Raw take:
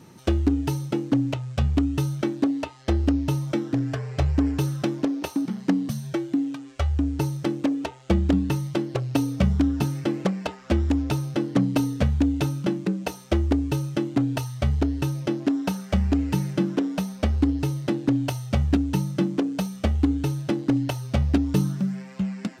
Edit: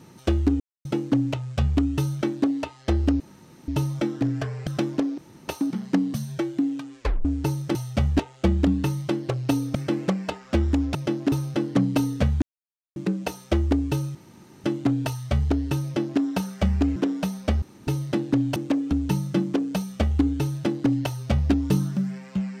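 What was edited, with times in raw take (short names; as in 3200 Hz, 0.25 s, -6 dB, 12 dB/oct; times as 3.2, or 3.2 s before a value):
0.6–0.85 mute
3.2 insert room tone 0.48 s
4.19–4.72 cut
5.23 insert room tone 0.30 s
6.75 tape stop 0.25 s
7.5–7.85 swap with 18.31–18.75
9.41–9.92 cut
12.22–12.76 mute
13.95 insert room tone 0.49 s
15.15–15.52 copy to 11.12
16.27–16.71 cut
17.37–17.62 room tone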